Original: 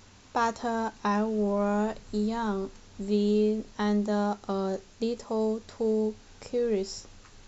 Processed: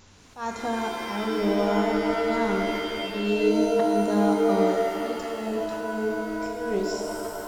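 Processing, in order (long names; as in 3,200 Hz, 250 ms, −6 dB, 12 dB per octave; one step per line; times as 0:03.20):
0:03.01–0:03.48: steady tone 2,700 Hz −33 dBFS
volume swells 205 ms
reverb with rising layers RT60 2.5 s, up +7 semitones, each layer −2 dB, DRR 2 dB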